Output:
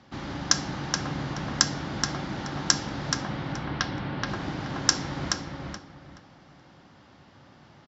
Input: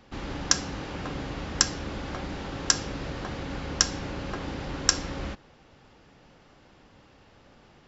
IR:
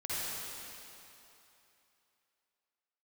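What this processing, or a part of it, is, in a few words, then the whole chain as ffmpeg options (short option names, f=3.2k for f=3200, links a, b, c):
car door speaker: -filter_complex "[0:a]highpass=84,equalizer=f=140:t=q:w=4:g=4,equalizer=f=460:t=q:w=4:g=-8,equalizer=f=2.6k:t=q:w=4:g=-5,lowpass=f=6.8k:w=0.5412,lowpass=f=6.8k:w=1.3066,asettb=1/sr,asplit=3[a][b][c];[a]atrim=end=3.134[d];[b]atrim=start=3.13:end=4.27,asetpts=PTS-STARTPTS,afade=t=in:d=0.004:c=qsin,afade=t=out:st=1.136:d=0.004:c=qsin,lowpass=f=3.9k:w=0.5412,lowpass=f=3.9k:w=1.3066[e];[c]atrim=start=4.266[f];[d][e]acrossfade=d=0.004:c1=hsin:c2=qsin[g];[g][f]acrossfade=d=0.004:c1=qsin:c2=hsin,asplit=2[h][i];[i]adelay=426,lowpass=f=4.2k:p=1,volume=-3dB,asplit=2[j][k];[k]adelay=426,lowpass=f=4.2k:p=1,volume=0.26,asplit=2[l][m];[m]adelay=426,lowpass=f=4.2k:p=1,volume=0.26,asplit=2[n][o];[o]adelay=426,lowpass=f=4.2k:p=1,volume=0.26[p];[h][j][l][n][p]amix=inputs=5:normalize=0,volume=1.5dB"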